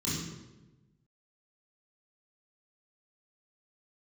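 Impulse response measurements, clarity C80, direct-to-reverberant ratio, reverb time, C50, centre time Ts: 3.0 dB, −9.5 dB, 1.1 s, −0.5 dB, 77 ms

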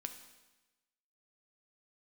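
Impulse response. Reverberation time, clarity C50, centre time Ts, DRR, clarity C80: 1.1 s, 9.0 dB, 17 ms, 6.0 dB, 11.0 dB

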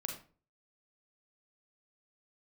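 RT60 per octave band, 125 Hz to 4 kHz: 0.50, 0.45, 0.45, 0.35, 0.35, 0.25 seconds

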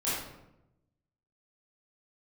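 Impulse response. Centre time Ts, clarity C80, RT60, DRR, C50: 70 ms, 3.0 dB, 0.90 s, −11.0 dB, −1.0 dB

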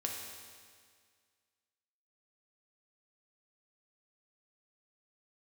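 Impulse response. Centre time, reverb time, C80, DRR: 75 ms, 1.9 s, 3.5 dB, −0.5 dB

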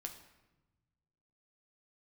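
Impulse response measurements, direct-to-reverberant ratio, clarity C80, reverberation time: 4.0 dB, 11.5 dB, 1.1 s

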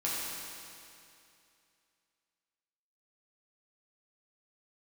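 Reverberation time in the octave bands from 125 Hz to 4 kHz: 2.6, 2.6, 2.6, 2.6, 2.6, 2.5 seconds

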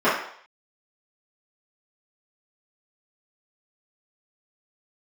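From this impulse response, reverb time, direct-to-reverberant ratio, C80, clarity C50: 0.60 s, −14.0 dB, 7.5 dB, 3.0 dB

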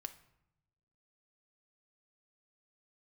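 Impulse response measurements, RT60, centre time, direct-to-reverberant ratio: 0.80 s, 6 ms, 7.0 dB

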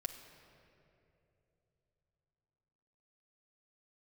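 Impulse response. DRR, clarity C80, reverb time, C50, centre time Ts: 2.5 dB, 9.0 dB, 3.0 s, 8.0 dB, 36 ms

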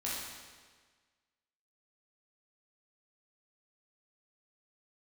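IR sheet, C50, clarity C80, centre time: −1.5 dB, 1.5 dB, 96 ms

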